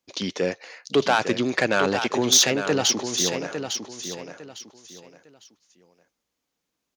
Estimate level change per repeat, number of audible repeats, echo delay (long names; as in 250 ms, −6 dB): −11.5 dB, 3, 854 ms